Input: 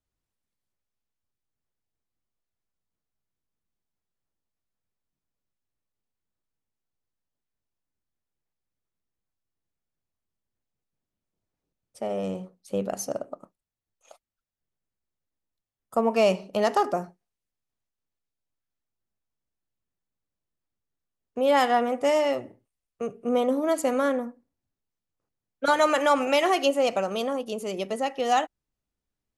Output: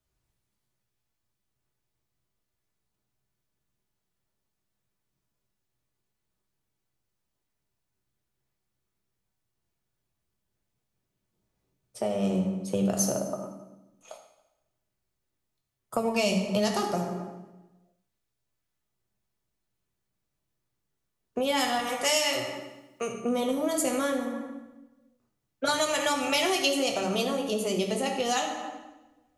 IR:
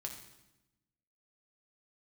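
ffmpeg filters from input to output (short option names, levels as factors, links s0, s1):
-filter_complex "[0:a]asettb=1/sr,asplit=3[s0][s1][s2];[s0]atrim=end=21.794[s3];[s1]atrim=start=21.79:end=23.12,asetpts=PTS-STARTPTS,afade=t=in:d=0.004:c=qsin,afade=t=out:st=1.326:d=0.004:c=qsin,tiltshelf=f=970:g=-8.5[s4];[s2]atrim=start=23.116[s5];[s3][s4]acrossfade=d=0.004:c1=hsin:c2=qsin[s6];[s6][s5]acrossfade=d=0.004:c1=qsin:c2=hsin[s7];[1:a]atrim=start_sample=2205[s8];[s7][s8]afir=irnorm=-1:irlink=0,acrossover=split=180|3000[s9][s10][s11];[s10]acompressor=threshold=0.0158:ratio=6[s12];[s9][s12][s11]amix=inputs=3:normalize=0,volume=2.82"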